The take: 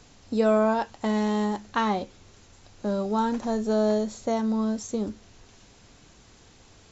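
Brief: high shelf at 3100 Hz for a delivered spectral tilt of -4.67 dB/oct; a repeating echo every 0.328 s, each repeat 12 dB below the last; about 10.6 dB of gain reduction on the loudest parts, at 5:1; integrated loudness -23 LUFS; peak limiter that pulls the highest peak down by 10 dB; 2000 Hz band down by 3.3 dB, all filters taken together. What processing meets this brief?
bell 2000 Hz -6.5 dB; high shelf 3100 Hz +7 dB; compressor 5:1, threshold -29 dBFS; limiter -27.5 dBFS; feedback echo 0.328 s, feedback 25%, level -12 dB; gain +13.5 dB

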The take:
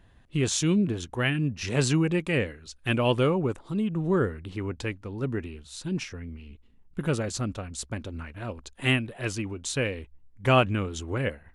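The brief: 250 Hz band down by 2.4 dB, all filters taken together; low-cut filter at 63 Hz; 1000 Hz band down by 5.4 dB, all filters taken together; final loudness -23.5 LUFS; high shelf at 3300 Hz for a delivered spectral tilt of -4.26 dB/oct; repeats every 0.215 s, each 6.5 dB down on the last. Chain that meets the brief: HPF 63 Hz; bell 250 Hz -3 dB; bell 1000 Hz -8 dB; high shelf 3300 Hz +5 dB; feedback echo 0.215 s, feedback 47%, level -6.5 dB; gain +4.5 dB

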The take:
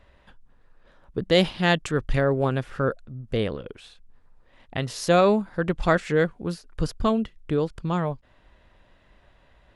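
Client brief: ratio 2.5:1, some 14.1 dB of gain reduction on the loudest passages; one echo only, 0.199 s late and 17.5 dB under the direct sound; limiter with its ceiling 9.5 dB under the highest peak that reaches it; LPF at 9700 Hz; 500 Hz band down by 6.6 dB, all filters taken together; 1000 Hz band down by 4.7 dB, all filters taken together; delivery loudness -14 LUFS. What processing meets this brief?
LPF 9700 Hz; bell 500 Hz -7 dB; bell 1000 Hz -4 dB; compressor 2.5:1, threshold -40 dBFS; limiter -31.5 dBFS; echo 0.199 s -17.5 dB; gain +29.5 dB

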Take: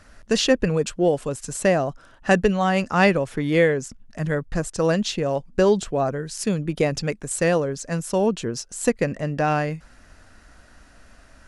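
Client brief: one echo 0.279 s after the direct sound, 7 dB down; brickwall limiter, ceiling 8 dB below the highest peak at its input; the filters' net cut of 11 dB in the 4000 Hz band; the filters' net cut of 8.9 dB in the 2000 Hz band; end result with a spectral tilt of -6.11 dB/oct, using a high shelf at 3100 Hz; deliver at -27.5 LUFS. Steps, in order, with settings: bell 2000 Hz -7.5 dB; high shelf 3100 Hz -7 dB; bell 4000 Hz -6.5 dB; limiter -13.5 dBFS; echo 0.279 s -7 dB; gain -2.5 dB

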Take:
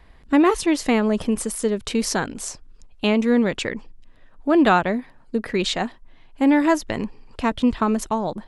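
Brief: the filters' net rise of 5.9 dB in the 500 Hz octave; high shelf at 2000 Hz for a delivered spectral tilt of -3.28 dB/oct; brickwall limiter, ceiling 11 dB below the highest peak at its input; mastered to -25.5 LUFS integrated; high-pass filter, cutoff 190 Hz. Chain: HPF 190 Hz; bell 500 Hz +7.5 dB; high shelf 2000 Hz +4.5 dB; gain -2.5 dB; limiter -14.5 dBFS

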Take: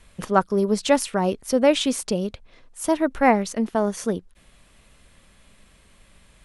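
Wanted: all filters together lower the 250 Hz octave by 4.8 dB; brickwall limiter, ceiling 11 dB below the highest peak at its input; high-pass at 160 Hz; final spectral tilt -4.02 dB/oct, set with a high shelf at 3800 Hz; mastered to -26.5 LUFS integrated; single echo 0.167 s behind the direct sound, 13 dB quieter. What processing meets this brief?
HPF 160 Hz; bell 250 Hz -5 dB; high shelf 3800 Hz -4 dB; limiter -14.5 dBFS; echo 0.167 s -13 dB; gain +0.5 dB

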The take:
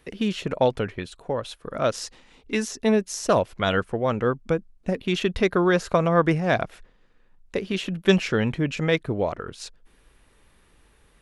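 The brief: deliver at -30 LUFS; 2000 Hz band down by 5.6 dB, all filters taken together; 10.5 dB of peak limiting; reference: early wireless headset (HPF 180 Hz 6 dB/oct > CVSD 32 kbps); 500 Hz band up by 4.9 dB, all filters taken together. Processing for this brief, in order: bell 500 Hz +7 dB; bell 2000 Hz -8 dB; limiter -13.5 dBFS; HPF 180 Hz 6 dB/oct; CVSD 32 kbps; gain -4 dB

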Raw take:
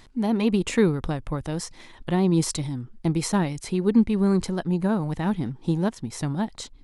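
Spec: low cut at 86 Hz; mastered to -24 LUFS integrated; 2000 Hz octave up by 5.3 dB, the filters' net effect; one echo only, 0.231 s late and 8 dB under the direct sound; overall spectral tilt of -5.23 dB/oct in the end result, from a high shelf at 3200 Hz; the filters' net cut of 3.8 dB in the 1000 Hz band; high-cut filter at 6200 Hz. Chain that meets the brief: HPF 86 Hz; LPF 6200 Hz; bell 1000 Hz -7 dB; bell 2000 Hz +5.5 dB; high shelf 3200 Hz +9 dB; echo 0.231 s -8 dB; gain +0.5 dB

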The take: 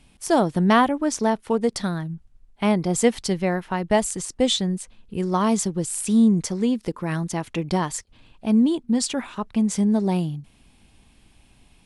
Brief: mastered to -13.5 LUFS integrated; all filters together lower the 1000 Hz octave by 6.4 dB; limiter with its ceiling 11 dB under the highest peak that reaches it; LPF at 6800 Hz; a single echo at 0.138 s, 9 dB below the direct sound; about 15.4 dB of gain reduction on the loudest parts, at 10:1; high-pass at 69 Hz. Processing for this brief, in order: HPF 69 Hz; LPF 6800 Hz; bell 1000 Hz -8.5 dB; compressor 10:1, threshold -30 dBFS; limiter -29 dBFS; echo 0.138 s -9 dB; gain +24 dB

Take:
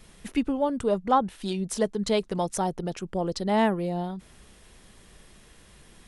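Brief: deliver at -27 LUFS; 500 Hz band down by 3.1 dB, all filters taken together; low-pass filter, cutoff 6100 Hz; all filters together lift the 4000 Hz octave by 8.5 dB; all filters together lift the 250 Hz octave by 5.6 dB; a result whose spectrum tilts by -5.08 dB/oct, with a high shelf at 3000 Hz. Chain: LPF 6100 Hz; bell 250 Hz +8.5 dB; bell 500 Hz -7 dB; high shelf 3000 Hz +8.5 dB; bell 4000 Hz +5 dB; gain -2.5 dB

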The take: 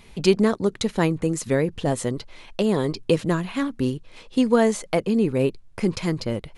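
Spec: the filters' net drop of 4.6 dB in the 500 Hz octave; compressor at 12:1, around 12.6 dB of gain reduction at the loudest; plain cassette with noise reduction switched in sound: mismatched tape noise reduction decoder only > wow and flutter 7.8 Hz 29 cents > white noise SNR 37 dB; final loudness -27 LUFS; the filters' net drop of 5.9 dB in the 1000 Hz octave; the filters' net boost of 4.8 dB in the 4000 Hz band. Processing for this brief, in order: bell 500 Hz -4.5 dB; bell 1000 Hz -6.5 dB; bell 4000 Hz +6.5 dB; compressor 12:1, threshold -28 dBFS; mismatched tape noise reduction decoder only; wow and flutter 7.8 Hz 29 cents; white noise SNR 37 dB; gain +7 dB

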